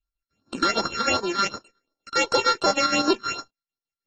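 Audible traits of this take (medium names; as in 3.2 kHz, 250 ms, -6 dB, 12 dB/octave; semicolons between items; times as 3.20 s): a buzz of ramps at a fixed pitch in blocks of 32 samples; chopped level 6.5 Hz, depth 60%, duty 60%; phasing stages 6, 2.7 Hz, lowest notch 670–2800 Hz; AAC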